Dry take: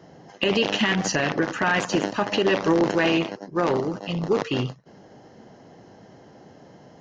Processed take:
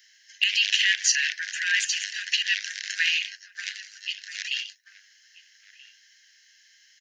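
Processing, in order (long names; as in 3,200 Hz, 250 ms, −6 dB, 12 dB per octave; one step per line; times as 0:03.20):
Butterworth high-pass 1,600 Hz 96 dB per octave
spectral tilt +3 dB per octave
slap from a distant wall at 220 metres, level −12 dB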